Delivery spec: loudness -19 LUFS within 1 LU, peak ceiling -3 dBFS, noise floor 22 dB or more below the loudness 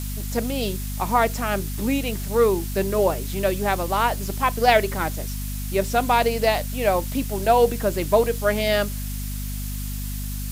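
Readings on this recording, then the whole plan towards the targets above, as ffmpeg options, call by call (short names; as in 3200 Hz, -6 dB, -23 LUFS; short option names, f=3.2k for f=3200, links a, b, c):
hum 50 Hz; harmonics up to 250 Hz; hum level -27 dBFS; noise floor -29 dBFS; noise floor target -45 dBFS; loudness -23.0 LUFS; peak -4.0 dBFS; loudness target -19.0 LUFS
-> -af "bandreject=f=50:t=h:w=4,bandreject=f=100:t=h:w=4,bandreject=f=150:t=h:w=4,bandreject=f=200:t=h:w=4,bandreject=f=250:t=h:w=4"
-af "afftdn=nr=16:nf=-29"
-af "volume=4dB,alimiter=limit=-3dB:level=0:latency=1"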